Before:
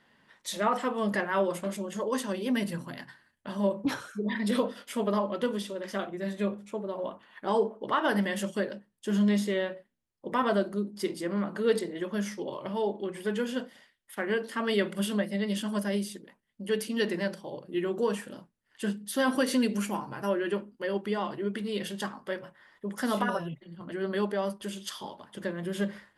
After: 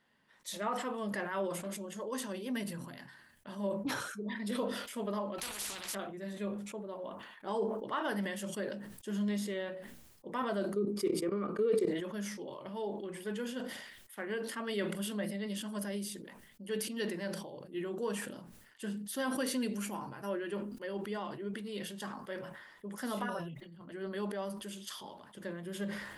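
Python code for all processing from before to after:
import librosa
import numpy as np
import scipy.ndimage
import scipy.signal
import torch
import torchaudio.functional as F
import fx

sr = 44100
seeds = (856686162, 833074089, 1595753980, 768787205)

y = fx.chain(x, sr, fx.doubler(ms=14.0, db=-13),
    fx.spectral_comp(ratio=10.0), at=(5.38, 5.95))
y = fx.chain(y, sr, fx.level_steps(step_db=17),
    fx.low_shelf(hz=340.0, db=6.0),
    fx.small_body(hz=(420.0, 1200.0, 2300.0), ring_ms=25, db=15), at=(10.76, 11.88))
y = fx.high_shelf(y, sr, hz=8800.0, db=6.5)
y = fx.sustainer(y, sr, db_per_s=47.0)
y = F.gain(torch.from_numpy(y), -9.0).numpy()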